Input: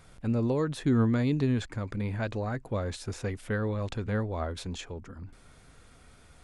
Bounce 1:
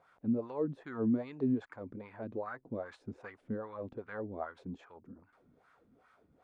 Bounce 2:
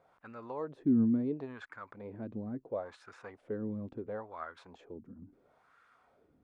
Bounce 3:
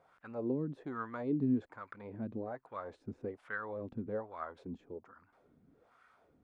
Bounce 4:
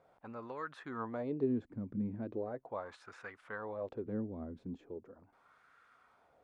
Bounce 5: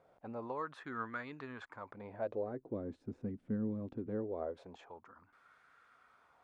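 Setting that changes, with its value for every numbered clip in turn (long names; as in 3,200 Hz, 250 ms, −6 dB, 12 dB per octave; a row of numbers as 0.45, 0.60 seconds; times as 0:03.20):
LFO wah, speed: 2.5, 0.73, 1.2, 0.39, 0.22 Hertz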